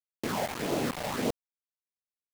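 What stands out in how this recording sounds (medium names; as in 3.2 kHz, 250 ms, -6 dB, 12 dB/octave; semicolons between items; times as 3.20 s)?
phasing stages 6, 1.7 Hz, lowest notch 310–1900 Hz; tremolo saw up 2.2 Hz, depth 70%; a quantiser's noise floor 6-bit, dither none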